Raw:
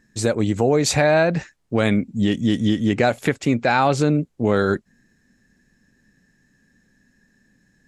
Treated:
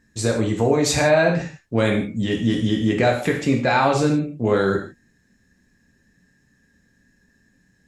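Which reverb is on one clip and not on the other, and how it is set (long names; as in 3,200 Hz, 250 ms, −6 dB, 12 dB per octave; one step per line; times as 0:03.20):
reverb whose tail is shaped and stops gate 190 ms falling, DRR 0.5 dB
level −2.5 dB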